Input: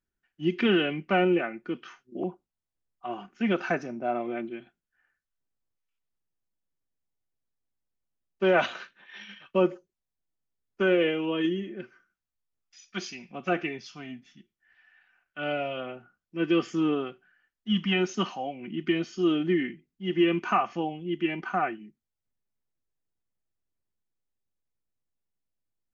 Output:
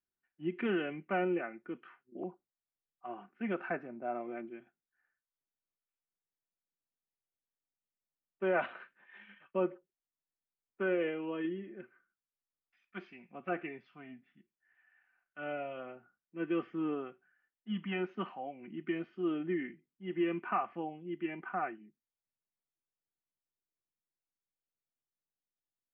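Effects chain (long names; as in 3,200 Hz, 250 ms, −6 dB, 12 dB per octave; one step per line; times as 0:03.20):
low-pass filter 2,300 Hz 24 dB per octave
low-shelf EQ 110 Hz −11.5 dB
level −8 dB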